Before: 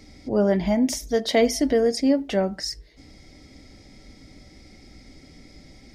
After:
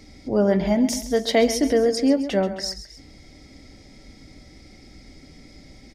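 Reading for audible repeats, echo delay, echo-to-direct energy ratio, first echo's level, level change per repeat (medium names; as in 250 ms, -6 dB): 2, 133 ms, -11.5 dB, -12.5 dB, -6.0 dB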